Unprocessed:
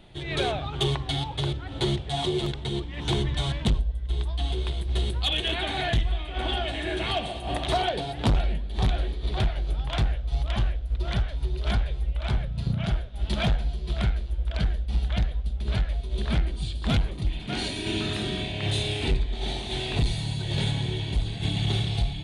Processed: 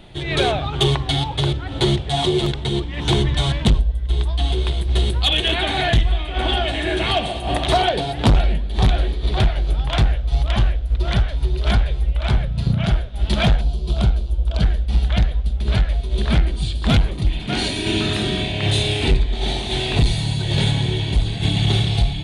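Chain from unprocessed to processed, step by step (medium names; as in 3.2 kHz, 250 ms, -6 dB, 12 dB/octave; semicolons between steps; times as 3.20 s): 13.61–14.62 s: peaking EQ 1.9 kHz -14.5 dB 0.71 oct; trim +8 dB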